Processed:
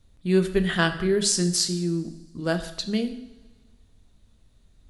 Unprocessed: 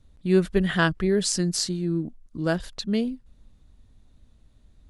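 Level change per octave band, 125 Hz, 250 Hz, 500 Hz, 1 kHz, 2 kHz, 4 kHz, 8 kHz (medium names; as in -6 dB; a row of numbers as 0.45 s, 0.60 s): -0.5 dB, -0.5 dB, 0.0 dB, -0.5 dB, 0.0 dB, +3.0 dB, +3.5 dB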